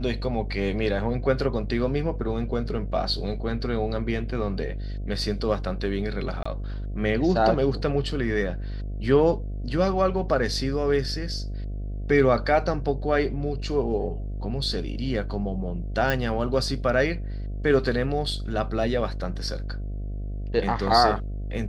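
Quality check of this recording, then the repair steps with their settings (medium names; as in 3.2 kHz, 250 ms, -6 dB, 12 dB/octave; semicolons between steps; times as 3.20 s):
buzz 50 Hz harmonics 14 -31 dBFS
6.43–6.46 s: dropout 25 ms
16.10 s: pop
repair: de-click; de-hum 50 Hz, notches 14; interpolate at 6.43 s, 25 ms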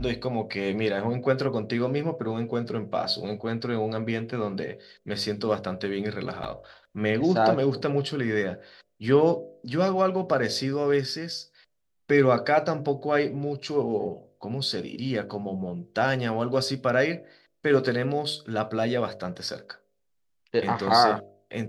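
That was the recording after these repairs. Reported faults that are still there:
nothing left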